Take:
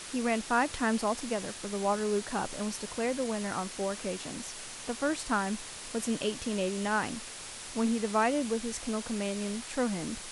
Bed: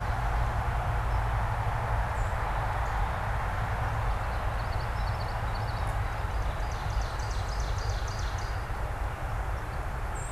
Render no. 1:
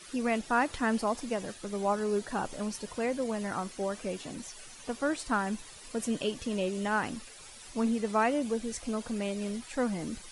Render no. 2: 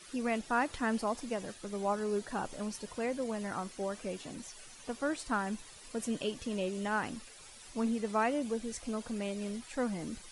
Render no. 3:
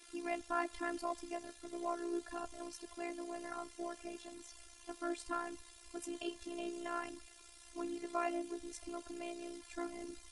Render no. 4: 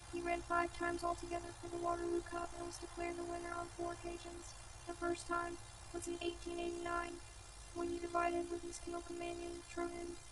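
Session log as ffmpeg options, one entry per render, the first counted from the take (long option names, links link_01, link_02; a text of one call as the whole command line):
ffmpeg -i in.wav -af "afftdn=noise_reduction=12:noise_floor=-44" out.wav
ffmpeg -i in.wav -af "volume=-3.5dB" out.wav
ffmpeg -i in.wav -af "aeval=exprs='val(0)*sin(2*PI*31*n/s)':channel_layout=same,afftfilt=real='hypot(re,im)*cos(PI*b)':imag='0':win_size=512:overlap=0.75" out.wav
ffmpeg -i in.wav -i bed.wav -filter_complex "[1:a]volume=-26dB[link_01];[0:a][link_01]amix=inputs=2:normalize=0" out.wav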